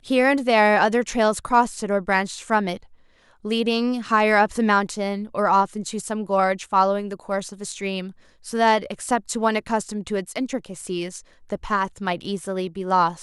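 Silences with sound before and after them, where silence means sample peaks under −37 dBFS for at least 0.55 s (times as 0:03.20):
0:02.77–0:03.45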